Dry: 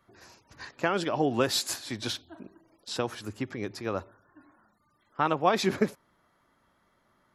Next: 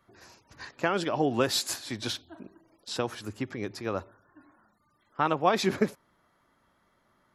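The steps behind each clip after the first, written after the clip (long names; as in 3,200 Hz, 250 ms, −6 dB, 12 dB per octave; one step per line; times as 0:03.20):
no processing that can be heard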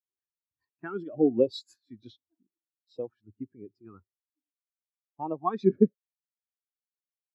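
auto-filter notch saw up 1.3 Hz 480–1,800 Hz
every bin expanded away from the loudest bin 2.5 to 1
level +4 dB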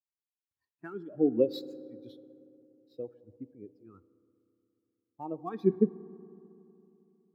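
running median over 5 samples
rotating-speaker cabinet horn 1.2 Hz, later 6.3 Hz, at 0:02.48
convolution reverb RT60 3.0 s, pre-delay 3 ms, DRR 17 dB
level −2 dB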